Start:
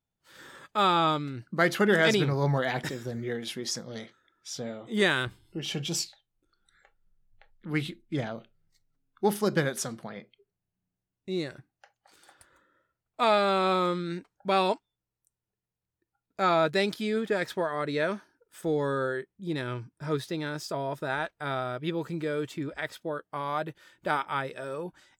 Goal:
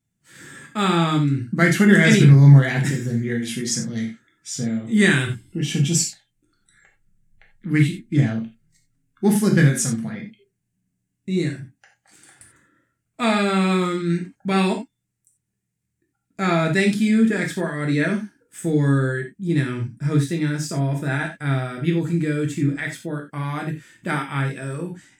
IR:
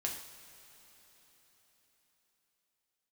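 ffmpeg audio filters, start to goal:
-filter_complex "[0:a]equalizer=f=125:t=o:w=1:g=12,equalizer=f=250:t=o:w=1:g=11,equalizer=f=500:t=o:w=1:g=-4,equalizer=f=1000:t=o:w=1:g=-5,equalizer=f=2000:t=o:w=1:g=8,equalizer=f=4000:t=o:w=1:g=-4,equalizer=f=8000:t=o:w=1:g=12[s0];[1:a]atrim=start_sample=2205,atrim=end_sample=4410[s1];[s0][s1]afir=irnorm=-1:irlink=0,volume=1.19"

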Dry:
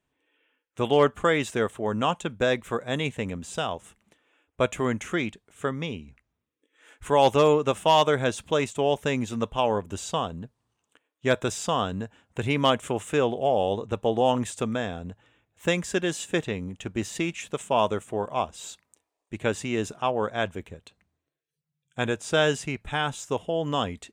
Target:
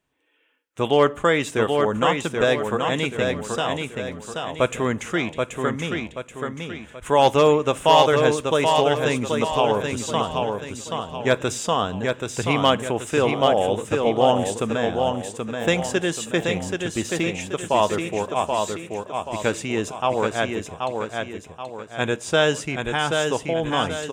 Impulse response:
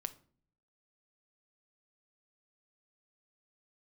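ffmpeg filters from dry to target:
-filter_complex "[0:a]aecho=1:1:780|1560|2340|3120|3900:0.596|0.244|0.1|0.0411|0.0168,asplit=2[s0][s1];[1:a]atrim=start_sample=2205,lowshelf=f=230:g=-7.5[s2];[s1][s2]afir=irnorm=-1:irlink=0,volume=0.944[s3];[s0][s3]amix=inputs=2:normalize=0,volume=0.891"

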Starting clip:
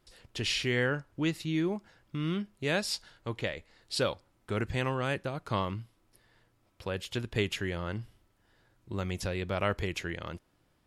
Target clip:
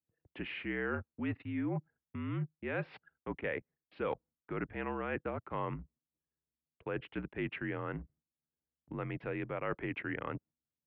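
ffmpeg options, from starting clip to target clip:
-af "anlmdn=0.0398,agate=range=0.355:threshold=0.00112:ratio=16:detection=peak,areverse,acompressor=threshold=0.01:ratio=6,areverse,highpass=f=170:t=q:w=0.5412,highpass=f=170:t=q:w=1.307,lowpass=f=2500:t=q:w=0.5176,lowpass=f=2500:t=q:w=0.7071,lowpass=f=2500:t=q:w=1.932,afreqshift=-53,volume=2.24"

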